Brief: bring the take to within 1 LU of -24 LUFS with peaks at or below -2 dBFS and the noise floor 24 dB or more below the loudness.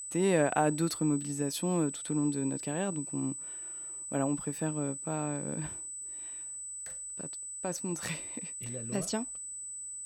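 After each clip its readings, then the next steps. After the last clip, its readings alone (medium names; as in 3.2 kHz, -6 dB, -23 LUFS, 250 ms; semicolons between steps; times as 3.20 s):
steady tone 8 kHz; tone level -39 dBFS; loudness -33.5 LUFS; peak level -13.5 dBFS; loudness target -24.0 LUFS
-> band-stop 8 kHz, Q 30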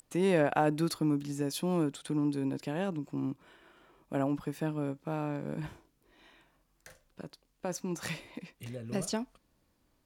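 steady tone not found; loudness -33.5 LUFS; peak level -13.5 dBFS; loudness target -24.0 LUFS
-> trim +9.5 dB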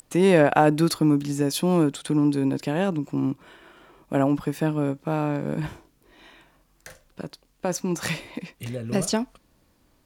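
loudness -24.0 LUFS; peak level -4.0 dBFS; noise floor -64 dBFS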